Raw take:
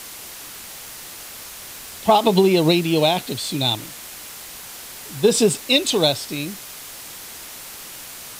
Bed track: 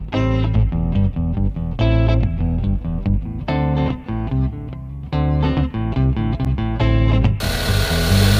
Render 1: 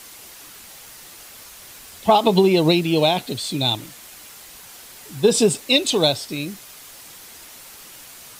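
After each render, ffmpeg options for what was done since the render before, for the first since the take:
-af "afftdn=nr=6:nf=-37"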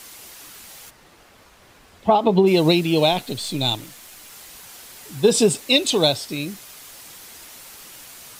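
-filter_complex "[0:a]asplit=3[a][b][c];[a]afade=t=out:st=0.89:d=0.02[d];[b]lowpass=f=1.2k:p=1,afade=t=in:st=0.89:d=0.02,afade=t=out:st=2.46:d=0.02[e];[c]afade=t=in:st=2.46:d=0.02[f];[d][e][f]amix=inputs=3:normalize=0,asettb=1/sr,asplit=3[g][h][i];[g]atrim=end=3.124[j];[h]atrim=start=3.12:end=4.32,asetpts=PTS-STARTPTS,afade=t=in:d=0.004:c=qsin,afade=t=out:st=1.196:d=0.004:c=qsin,aeval=exprs='if(lt(val(0),0),0.708*val(0),val(0))':c=same[k];[i]atrim=start=4.316[l];[j][k]acrossfade=d=0.004:c1=hsin:c2=qsin[m];[m][l]acrossfade=d=0.004:c1=qsin:c2=hsin"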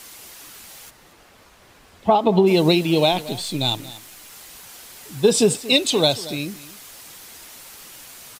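-af "aecho=1:1:231:0.133"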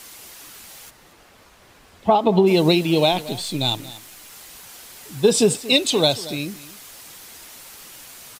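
-af anull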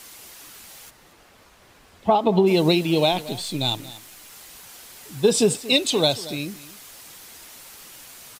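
-af "volume=-2dB"

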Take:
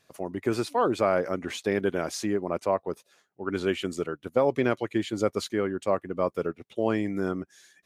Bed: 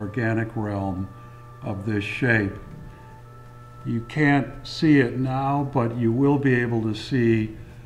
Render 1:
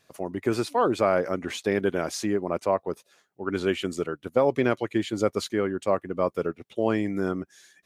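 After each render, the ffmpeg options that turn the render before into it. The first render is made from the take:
-af "volume=1.5dB"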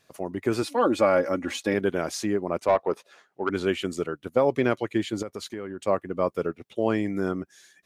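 -filter_complex "[0:a]asettb=1/sr,asplit=3[a][b][c];[a]atrim=end=0.624[d];[b]atrim=start=0.62:end=1.74,asetpts=PTS-STARTPTS,afade=t=in:d=0.004:c=qsin,afade=t=out:st=1.116:d=0.004:c=qsin,aecho=1:1:3.6:0.65,atrim=end_sample=49392[e];[c]atrim=start=1.736[f];[d][e]acrossfade=d=0.004:c1=hsin:c2=qsin[g];[g][f]acrossfade=d=0.004:c1=qsin:c2=hsin,asplit=3[h][i][j];[h]afade=t=out:st=2.67:d=0.02[k];[i]asplit=2[l][m];[m]highpass=f=720:p=1,volume=17dB,asoftclip=type=tanh:threshold=-10.5dB[n];[l][n]amix=inputs=2:normalize=0,lowpass=f=1.7k:p=1,volume=-6dB,afade=t=in:st=2.67:d=0.02,afade=t=out:st=3.48:d=0.02[o];[j]afade=t=in:st=3.48:d=0.02[p];[k][o][p]amix=inputs=3:normalize=0,asettb=1/sr,asplit=3[q][r][s];[q]atrim=end=5.224[t];[r]atrim=start=5.22:end=5.84,asetpts=PTS-STARTPTS,afade=t=in:d=0.004:c=qsin,afade=t=out:st=0.616:d=0.004:c=qsin,acompressor=threshold=-31dB:ratio=5:attack=3.2:release=140:knee=1:detection=peak[u];[s]atrim=start=5.836[v];[t][u]acrossfade=d=0.004:c1=hsin:c2=qsin[w];[w][v]acrossfade=d=0.004:c1=qsin:c2=hsin"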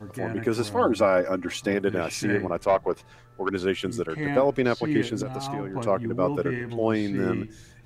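-filter_complex "[1:a]volume=-10dB[a];[0:a][a]amix=inputs=2:normalize=0"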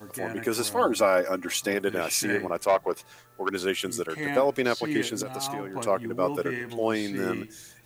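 -af "aemphasis=mode=production:type=bsi"

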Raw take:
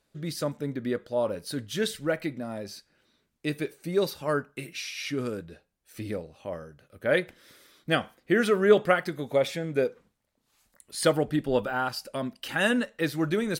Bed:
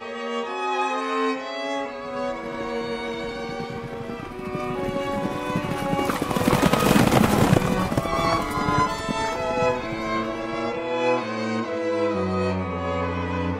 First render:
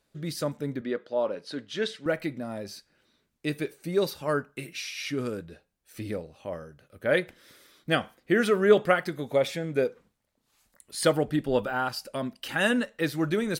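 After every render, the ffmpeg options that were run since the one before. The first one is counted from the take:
-filter_complex "[0:a]asettb=1/sr,asplit=3[a][b][c];[a]atrim=end=0.814[d];[b]atrim=start=0.81:end=2.06,asetpts=PTS-STARTPTS,afade=t=in:d=0.004:c=qsin,afade=t=out:st=1.246:d=0.004:c=qsin,highpass=250,lowpass=4.6k[e];[c]atrim=start=2.056[f];[d][e]acrossfade=d=0.004:c1=hsin:c2=qsin[g];[g][f]acrossfade=d=0.004:c1=qsin:c2=hsin"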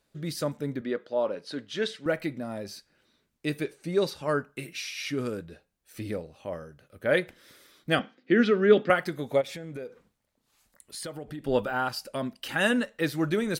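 -filter_complex "[0:a]asettb=1/sr,asplit=3[a][b][c];[a]atrim=end=3.634[d];[b]atrim=start=3.63:end=4.4,asetpts=PTS-STARTPTS,afade=t=in:d=0.004:c=qsin,afade=t=out:st=0.766:d=0.004:c=qsin,lowpass=9.5k[e];[c]atrim=start=4.396[f];[d][e]acrossfade=d=0.004:c1=hsin:c2=qsin[g];[g][f]acrossfade=d=0.004:c1=qsin:c2=hsin,asettb=1/sr,asplit=3[h][i][j];[h]atrim=end=7.994[k];[i]atrim=start=7.99:end=8.9,asetpts=PTS-STARTPTS,afade=t=in:d=0.004:c=qsin,afade=t=out:st=0.906:d=0.004:c=qsin,highpass=f=160:w=0.5412,highpass=f=160:w=1.3066,equalizer=f=260:t=q:w=4:g=10,equalizer=f=660:t=q:w=4:g=-6,equalizer=f=1k:t=q:w=4:g=-9,lowpass=f=5k:w=0.5412,lowpass=f=5k:w=1.3066[l];[j]atrim=start=8.896[m];[k][l]acrossfade=d=0.004:c1=hsin:c2=qsin[n];[n][m]acrossfade=d=0.004:c1=qsin:c2=hsin,asplit=3[o][p][q];[o]afade=t=out:st=9.4:d=0.02[r];[p]acompressor=threshold=-35dB:ratio=6:attack=3.2:release=140:knee=1:detection=peak,afade=t=in:st=9.4:d=0.02,afade=t=out:st=11.43:d=0.02[s];[q]afade=t=in:st=11.43:d=0.02[t];[r][s][t]amix=inputs=3:normalize=0"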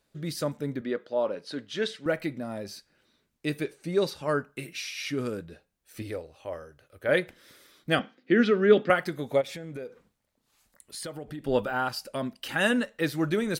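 -filter_complex "[0:a]asettb=1/sr,asplit=3[a][b][c];[a]atrim=end=6.024[d];[b]atrim=start=6.02:end=7.09,asetpts=PTS-STARTPTS,afade=t=in:d=0.004:c=qsin,afade=t=out:st=1.066:d=0.004:c=qsin,equalizer=f=190:w=2.2:g=-15[e];[c]atrim=start=7.086[f];[d][e]acrossfade=d=0.004:c1=hsin:c2=qsin[g];[g][f]acrossfade=d=0.004:c1=qsin:c2=hsin"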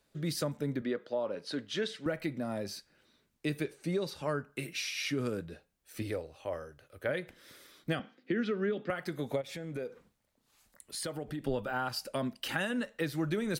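-filter_complex "[0:a]alimiter=limit=-16.5dB:level=0:latency=1:release=432,acrossover=split=150[a][b];[b]acompressor=threshold=-30dB:ratio=6[c];[a][c]amix=inputs=2:normalize=0"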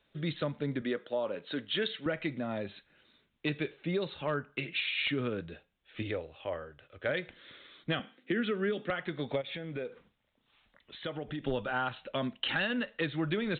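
-af "crystalizer=i=4:c=0,aresample=8000,asoftclip=type=hard:threshold=-22.5dB,aresample=44100"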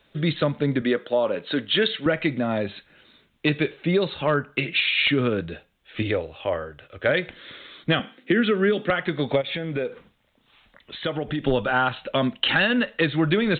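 -af "volume=11dB"

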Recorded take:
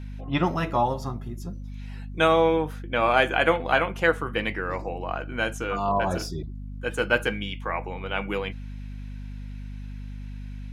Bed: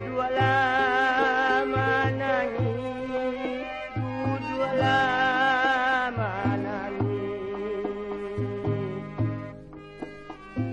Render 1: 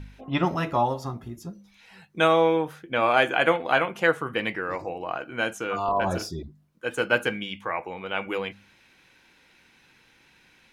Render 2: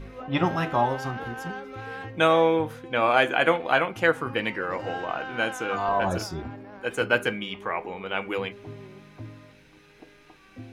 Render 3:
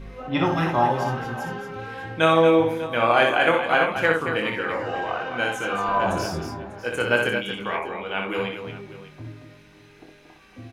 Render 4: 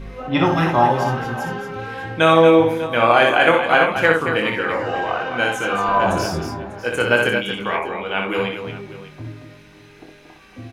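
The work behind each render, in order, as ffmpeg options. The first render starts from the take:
-af "bandreject=f=50:t=h:w=4,bandreject=f=100:t=h:w=4,bandreject=f=150:t=h:w=4,bandreject=f=200:t=h:w=4,bandreject=f=250:t=h:w=4"
-filter_complex "[1:a]volume=-13.5dB[a];[0:a][a]amix=inputs=2:normalize=0"
-filter_complex "[0:a]asplit=2[a][b];[b]adelay=25,volume=-7dB[c];[a][c]amix=inputs=2:normalize=0,aecho=1:1:61|229|596:0.596|0.398|0.141"
-af "volume=5dB,alimiter=limit=-1dB:level=0:latency=1"

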